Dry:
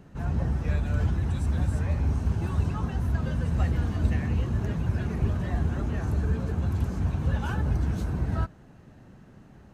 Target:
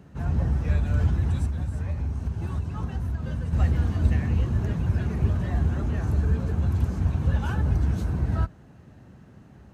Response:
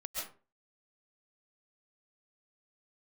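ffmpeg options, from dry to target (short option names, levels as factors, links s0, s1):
-filter_complex "[0:a]highpass=f=54:w=0.5412,highpass=f=54:w=1.3066,lowshelf=f=82:g=7.5,asettb=1/sr,asplit=3[s0][s1][s2];[s0]atrim=end=1.454[s3];[s1]atrim=start=1.45:end=3.53,asetpts=PTS-STARTPTS,afade=t=in:d=0.004:c=qsin,afade=t=out:st=2.076:d=0.004:c=qsin,acompressor=threshold=0.0562:ratio=6[s4];[s2]atrim=start=3.526[s5];[s3][s4]acrossfade=d=0.004:c1=hsin:c2=qsin[s6];[s6][s5]acrossfade=d=0.004:c1=qsin:c2=hsin"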